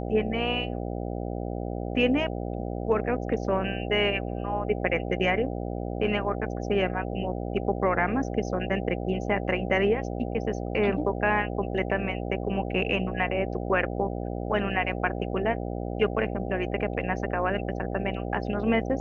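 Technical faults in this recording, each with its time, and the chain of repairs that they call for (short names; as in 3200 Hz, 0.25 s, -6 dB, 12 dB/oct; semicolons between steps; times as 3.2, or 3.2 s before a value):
buzz 60 Hz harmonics 13 -32 dBFS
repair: de-hum 60 Hz, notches 13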